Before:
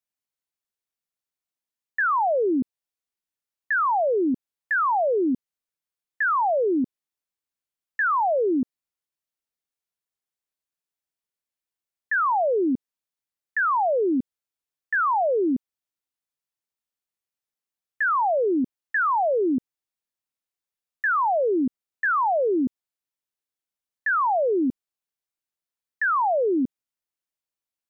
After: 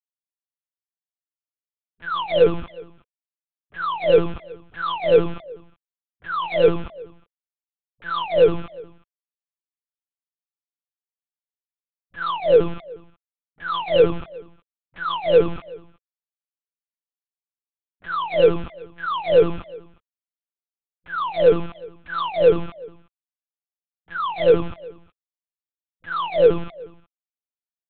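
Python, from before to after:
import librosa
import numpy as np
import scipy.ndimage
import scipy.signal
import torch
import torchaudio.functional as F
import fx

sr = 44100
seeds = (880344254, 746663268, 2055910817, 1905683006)

p1 = fx.peak_eq(x, sr, hz=75.0, db=8.0, octaves=0.58)
p2 = fx.over_compress(p1, sr, threshold_db=-29.0, ratio=-1.0)
p3 = p1 + (p2 * librosa.db_to_amplitude(-1.5))
p4 = fx.quant_companded(p3, sr, bits=2)
p5 = fx.fixed_phaser(p4, sr, hz=1200.0, stages=8)
p6 = fx.small_body(p5, sr, hz=(220.0, 480.0), ring_ms=30, db=16)
p7 = fx.dispersion(p6, sr, late='highs', ms=42.0, hz=420.0)
p8 = p7 + fx.echo_single(p7, sr, ms=364, db=-23.0, dry=0)
y = fx.lpc_monotone(p8, sr, seeds[0], pitch_hz=170.0, order=8)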